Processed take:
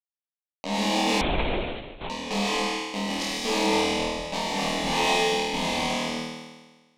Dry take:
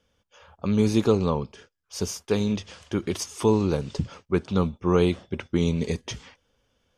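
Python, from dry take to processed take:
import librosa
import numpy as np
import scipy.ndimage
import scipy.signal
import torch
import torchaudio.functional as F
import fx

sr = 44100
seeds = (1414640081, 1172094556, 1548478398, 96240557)

p1 = fx.delta_hold(x, sr, step_db=-19.5)
p2 = scipy.signal.sosfilt(scipy.signal.butter(2, 2700.0, 'lowpass', fs=sr, output='sos'), p1)
p3 = fx.tube_stage(p2, sr, drive_db=24.0, bias=0.7)
p4 = fx.tilt_eq(p3, sr, slope=3.0)
p5 = fx.fixed_phaser(p4, sr, hz=380.0, stages=6)
p6 = p5 + fx.room_flutter(p5, sr, wall_m=4.3, rt60_s=1.3, dry=0)
p7 = fx.rev_gated(p6, sr, seeds[0], gate_ms=300, shape='flat', drr_db=-3.0)
p8 = np.clip(p7, -10.0 ** (-30.0 / 20.0), 10.0 ** (-30.0 / 20.0))
p9 = p7 + (p8 * 10.0 ** (-11.0 / 20.0))
p10 = fx.lpc_vocoder(p9, sr, seeds[1], excitation='whisper', order=8, at=(1.21, 2.1))
p11 = fx.peak_eq(p10, sr, hz=110.0, db=-12.0, octaves=1.2)
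y = p11 * 10.0 ** (4.5 / 20.0)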